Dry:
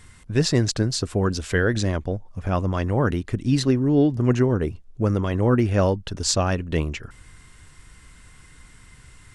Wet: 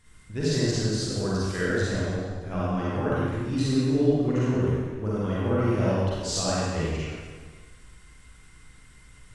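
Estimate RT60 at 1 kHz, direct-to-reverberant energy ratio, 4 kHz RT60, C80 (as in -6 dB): 1.6 s, -9.0 dB, 1.4 s, -2.5 dB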